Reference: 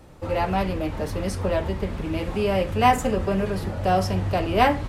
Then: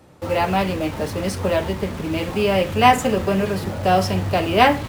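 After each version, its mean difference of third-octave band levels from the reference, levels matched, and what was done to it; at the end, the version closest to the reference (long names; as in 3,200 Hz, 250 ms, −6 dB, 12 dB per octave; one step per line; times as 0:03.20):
2.5 dB: high-pass filter 91 Hz 12 dB per octave
dynamic equaliser 3,100 Hz, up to +4 dB, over −41 dBFS, Q 1
in parallel at −5 dB: bit reduction 6 bits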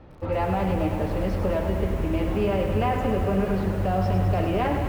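4.5 dB: brickwall limiter −17 dBFS, peak gain reduction 11 dB
high-frequency loss of the air 290 metres
feedback echo at a low word length 103 ms, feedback 80%, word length 8 bits, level −7.5 dB
level +1 dB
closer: first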